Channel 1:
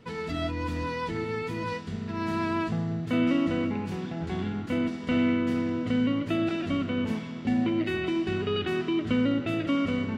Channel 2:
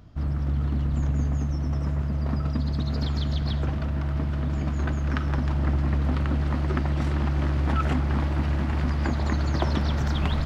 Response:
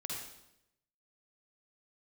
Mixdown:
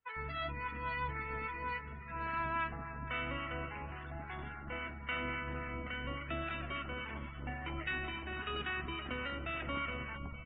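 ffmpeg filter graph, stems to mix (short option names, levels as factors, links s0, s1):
-filter_complex "[0:a]highpass=1100,volume=1.33,asplit=2[s0][s1];[s1]volume=0.266[s2];[1:a]tremolo=f=72:d=0.71,volume=0.158[s3];[s2]aecho=0:1:455|910|1365|1820|2275:1|0.39|0.152|0.0593|0.0231[s4];[s0][s3][s4]amix=inputs=3:normalize=0,lowpass=2300,afftdn=nr=27:nf=-47,acrossover=split=940[s5][s6];[s5]aeval=exprs='val(0)*(1-0.5/2+0.5/2*cos(2*PI*3.6*n/s))':c=same[s7];[s6]aeval=exprs='val(0)*(1-0.5/2-0.5/2*cos(2*PI*3.6*n/s))':c=same[s8];[s7][s8]amix=inputs=2:normalize=0"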